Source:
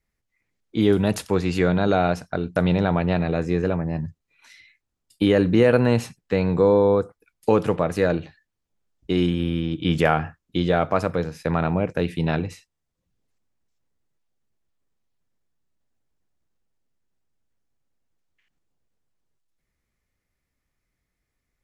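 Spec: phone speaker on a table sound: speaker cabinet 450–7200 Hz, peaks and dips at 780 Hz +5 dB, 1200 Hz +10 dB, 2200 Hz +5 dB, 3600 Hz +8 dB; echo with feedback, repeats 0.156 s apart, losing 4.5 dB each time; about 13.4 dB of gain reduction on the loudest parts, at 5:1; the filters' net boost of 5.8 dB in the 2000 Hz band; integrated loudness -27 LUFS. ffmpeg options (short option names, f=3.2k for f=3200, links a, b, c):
-af "equalizer=f=2k:t=o:g=3,acompressor=threshold=-28dB:ratio=5,highpass=f=450:w=0.5412,highpass=f=450:w=1.3066,equalizer=f=780:t=q:w=4:g=5,equalizer=f=1.2k:t=q:w=4:g=10,equalizer=f=2.2k:t=q:w=4:g=5,equalizer=f=3.6k:t=q:w=4:g=8,lowpass=f=7.2k:w=0.5412,lowpass=f=7.2k:w=1.3066,aecho=1:1:156|312|468|624|780|936|1092|1248|1404:0.596|0.357|0.214|0.129|0.0772|0.0463|0.0278|0.0167|0.01,volume=5.5dB"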